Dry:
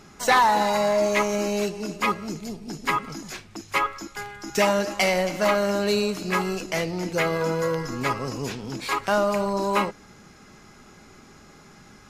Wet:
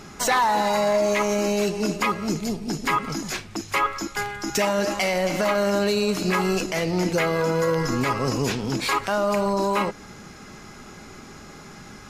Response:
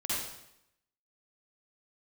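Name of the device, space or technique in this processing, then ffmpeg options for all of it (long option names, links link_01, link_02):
stacked limiters: -af "alimiter=limit=-16dB:level=0:latency=1:release=220,alimiter=limit=-20dB:level=0:latency=1:release=37,volume=7dB"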